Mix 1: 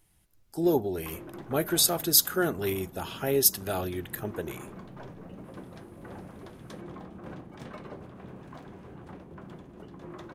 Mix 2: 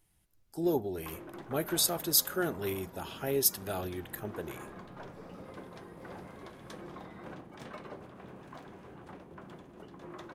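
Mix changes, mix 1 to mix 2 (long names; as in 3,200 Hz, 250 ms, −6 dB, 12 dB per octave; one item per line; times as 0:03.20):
speech −5.0 dB
first sound: add low-shelf EQ 280 Hz −8 dB
second sound: unmuted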